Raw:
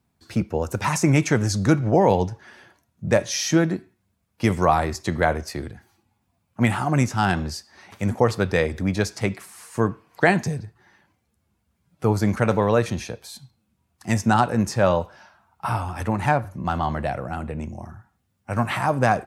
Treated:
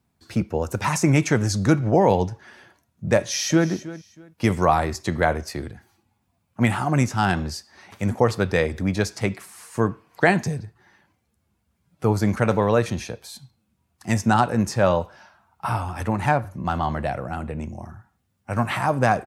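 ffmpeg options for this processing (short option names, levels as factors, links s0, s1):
-filter_complex "[0:a]asplit=2[s0][s1];[s1]afade=t=in:st=3.18:d=0.01,afade=t=out:st=3.69:d=0.01,aecho=0:1:320|640:0.149624|0.0374059[s2];[s0][s2]amix=inputs=2:normalize=0"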